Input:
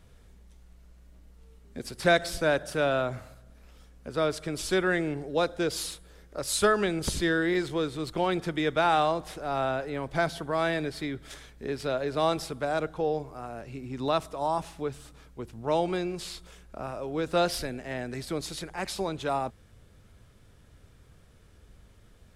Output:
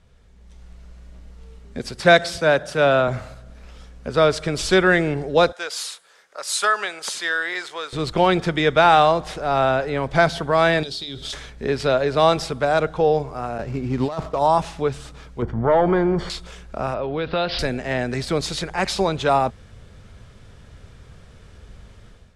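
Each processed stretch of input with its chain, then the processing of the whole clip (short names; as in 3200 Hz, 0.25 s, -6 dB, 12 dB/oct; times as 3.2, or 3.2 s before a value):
2.02–3.08 HPF 85 Hz + three-band expander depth 40%
5.52–7.93 HPF 1100 Hz + bell 3300 Hz -5.5 dB 2.2 oct
10.83–11.33 resonant high shelf 2700 Hz +10 dB, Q 3 + compressor 10:1, threshold -37 dBFS + notches 50/100/150/200/250/300/350/400 Hz
13.58–14.39 median filter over 15 samples + gate with hold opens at -34 dBFS, closes at -42 dBFS + negative-ratio compressor -31 dBFS, ratio -0.5
15.42–16.3 compressor 1.5:1, threshold -35 dBFS + sample leveller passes 2 + polynomial smoothing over 41 samples
16.94–17.59 steep low-pass 4500 Hz 48 dB/oct + dynamic EQ 2900 Hz, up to +4 dB, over -44 dBFS, Q 1 + compressor 3:1, threshold -32 dBFS
whole clip: LPF 7200 Hz 12 dB/oct; bell 310 Hz -5.5 dB 0.35 oct; AGC gain up to 11.5 dB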